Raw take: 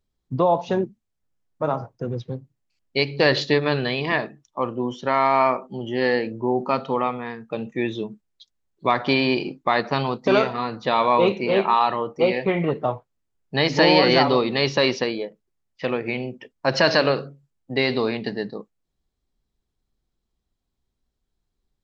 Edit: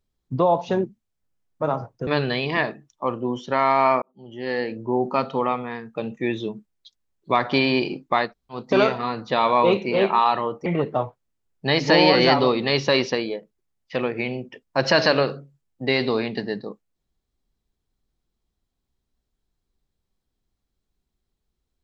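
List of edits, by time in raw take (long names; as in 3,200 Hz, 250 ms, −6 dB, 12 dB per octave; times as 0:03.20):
0:02.07–0:03.62: remove
0:05.57–0:06.51: fade in
0:09.81–0:10.12: fill with room tone, crossfade 0.16 s
0:12.21–0:12.55: remove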